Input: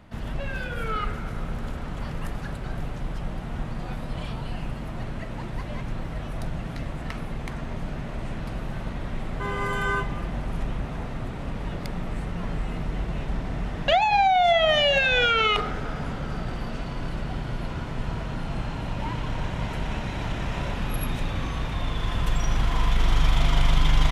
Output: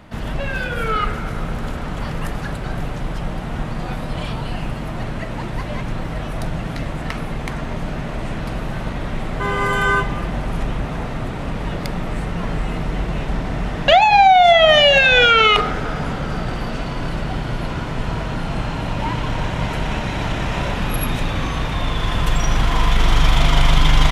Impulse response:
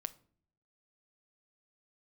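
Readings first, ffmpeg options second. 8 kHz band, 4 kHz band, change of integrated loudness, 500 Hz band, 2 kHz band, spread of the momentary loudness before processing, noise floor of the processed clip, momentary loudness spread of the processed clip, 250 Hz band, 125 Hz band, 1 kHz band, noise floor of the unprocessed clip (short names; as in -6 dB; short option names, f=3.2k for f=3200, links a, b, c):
+9.0 dB, +9.0 dB, +8.0 dB, +8.5 dB, +9.0 dB, 15 LU, -27 dBFS, 17 LU, +7.5 dB, +6.5 dB, +9.0 dB, -34 dBFS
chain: -filter_complex "[0:a]asplit=2[a][b];[1:a]atrim=start_sample=2205,lowshelf=f=130:g=-10[c];[b][c]afir=irnorm=-1:irlink=0,volume=3dB[d];[a][d]amix=inputs=2:normalize=0,volume=2.5dB"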